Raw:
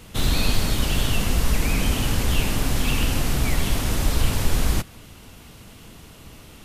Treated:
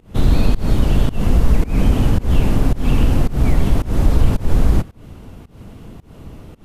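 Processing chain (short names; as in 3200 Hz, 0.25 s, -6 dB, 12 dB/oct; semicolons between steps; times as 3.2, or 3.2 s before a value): tilt shelf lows +9 dB, about 1400 Hz; in parallel at -1.5 dB: limiter -6 dBFS, peak gain reduction 7 dB; on the sum: pump 110 bpm, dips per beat 1, -23 dB, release 0.209 s; gain -5 dB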